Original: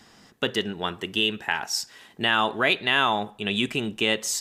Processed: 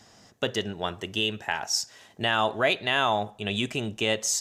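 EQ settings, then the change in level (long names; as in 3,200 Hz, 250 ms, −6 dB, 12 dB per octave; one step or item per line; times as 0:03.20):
graphic EQ with 15 bands 100 Hz +10 dB, 630 Hz +8 dB, 6,300 Hz +8 dB
−4.5 dB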